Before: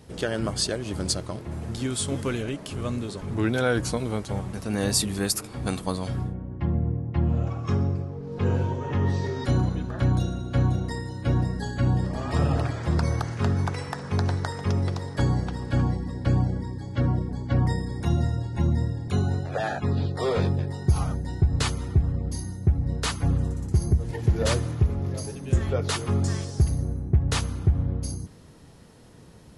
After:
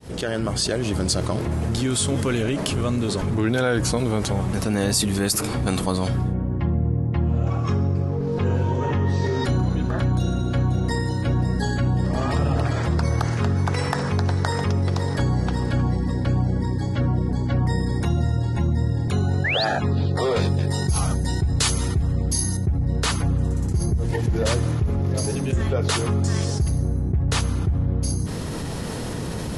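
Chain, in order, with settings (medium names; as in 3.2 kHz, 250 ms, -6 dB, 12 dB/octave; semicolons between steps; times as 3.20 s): fade-in on the opening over 1.14 s; 19.44–19.65 s: painted sound rise 1.6–5 kHz -28 dBFS; 20.36–22.57 s: treble shelf 3.5 kHz +12 dB; level flattener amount 70%; trim -3.5 dB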